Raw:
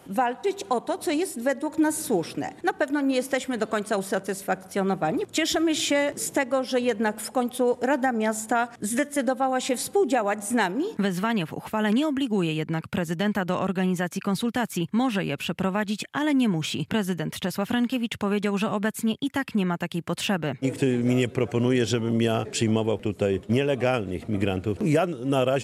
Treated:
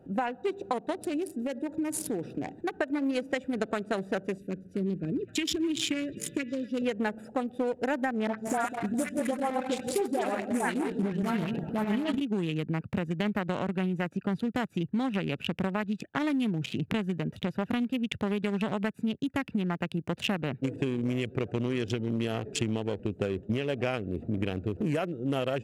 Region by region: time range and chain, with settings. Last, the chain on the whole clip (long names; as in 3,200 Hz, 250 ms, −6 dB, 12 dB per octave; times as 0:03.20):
0:01.03–0:02.77: downward compressor 3 to 1, threshold −26 dBFS + high-shelf EQ 2,500 Hz +4.5 dB + mains-hum notches 50/100/150 Hz
0:04.38–0:06.82: Butterworth band-reject 920 Hz, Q 0.55 + echo through a band-pass that steps 257 ms, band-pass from 1,200 Hz, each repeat 0.7 octaves, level −4.5 dB
0:08.27–0:12.20: feedback delay that plays each chunk backwards 102 ms, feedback 57%, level −6 dB + all-pass dispersion highs, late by 119 ms, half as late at 1,600 Hz
whole clip: adaptive Wiener filter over 41 samples; downward compressor, threshold −26 dBFS; dynamic equaliser 2,500 Hz, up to +4 dB, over −48 dBFS, Q 0.91